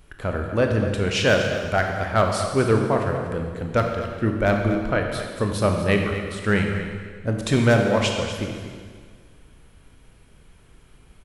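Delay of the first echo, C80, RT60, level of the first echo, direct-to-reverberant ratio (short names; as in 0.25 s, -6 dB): 0.242 s, 4.5 dB, 1.7 s, -12.0 dB, 2.5 dB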